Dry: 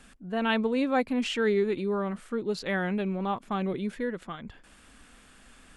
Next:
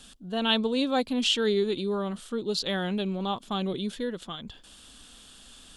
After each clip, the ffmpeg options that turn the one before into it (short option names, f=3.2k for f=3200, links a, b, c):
-af "highshelf=f=2.7k:t=q:w=3:g=7"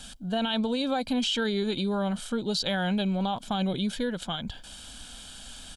-af "aecho=1:1:1.3:0.53,alimiter=limit=-21.5dB:level=0:latency=1:release=41,acompressor=threshold=-31dB:ratio=2.5,volume=5.5dB"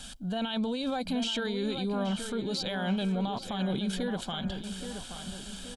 -filter_complex "[0:a]alimiter=level_in=0.5dB:limit=-24dB:level=0:latency=1:release=18,volume=-0.5dB,asplit=2[a][b];[b]adelay=826,lowpass=f=3.2k:p=1,volume=-8.5dB,asplit=2[c][d];[d]adelay=826,lowpass=f=3.2k:p=1,volume=0.49,asplit=2[e][f];[f]adelay=826,lowpass=f=3.2k:p=1,volume=0.49,asplit=2[g][h];[h]adelay=826,lowpass=f=3.2k:p=1,volume=0.49,asplit=2[i][j];[j]adelay=826,lowpass=f=3.2k:p=1,volume=0.49,asplit=2[k][l];[l]adelay=826,lowpass=f=3.2k:p=1,volume=0.49[m];[a][c][e][g][i][k][m]amix=inputs=7:normalize=0"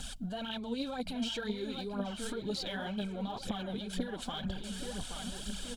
-af "acompressor=threshold=-35dB:ratio=4,aphaser=in_gain=1:out_gain=1:delay=4.7:decay=0.59:speed=2:type=triangular,aeval=exprs='val(0)+0.00141*(sin(2*PI*50*n/s)+sin(2*PI*2*50*n/s)/2+sin(2*PI*3*50*n/s)/3+sin(2*PI*4*50*n/s)/4+sin(2*PI*5*50*n/s)/5)':c=same,volume=-1.5dB"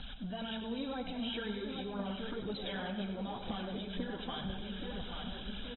-filter_complex "[0:a]asplit=2[a][b];[b]asoftclip=type=hard:threshold=-38dB,volume=-5.5dB[c];[a][c]amix=inputs=2:normalize=0,aecho=1:1:98|196|294|392|490|588:0.355|0.177|0.0887|0.0444|0.0222|0.0111,volume=-5.5dB" -ar 24000 -c:a aac -b:a 16k